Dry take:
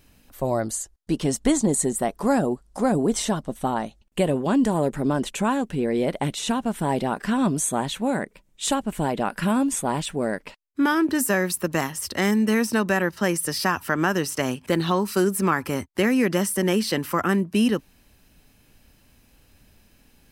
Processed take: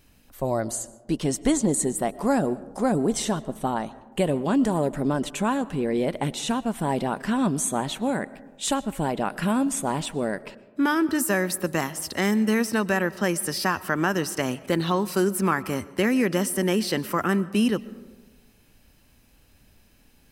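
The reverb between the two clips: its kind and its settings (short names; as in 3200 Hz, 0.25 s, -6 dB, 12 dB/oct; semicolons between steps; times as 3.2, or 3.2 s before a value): digital reverb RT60 1.3 s, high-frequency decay 0.3×, pre-delay 80 ms, DRR 18.5 dB; gain -1.5 dB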